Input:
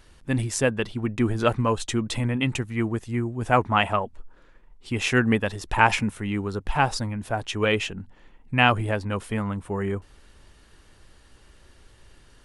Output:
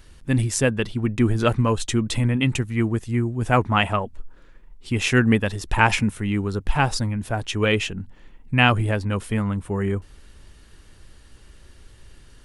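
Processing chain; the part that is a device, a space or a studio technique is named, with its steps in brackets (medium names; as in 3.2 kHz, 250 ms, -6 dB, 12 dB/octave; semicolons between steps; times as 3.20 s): smiley-face EQ (bass shelf 190 Hz +4 dB; peaking EQ 800 Hz -3.5 dB 1.5 oct; treble shelf 9.9 kHz +3.5 dB); trim +2.5 dB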